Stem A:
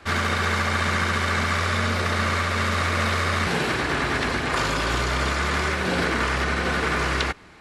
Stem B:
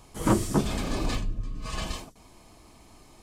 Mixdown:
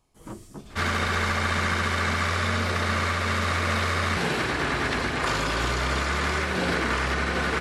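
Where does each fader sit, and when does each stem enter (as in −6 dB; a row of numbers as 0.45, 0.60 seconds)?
−2.0, −17.0 decibels; 0.70, 0.00 seconds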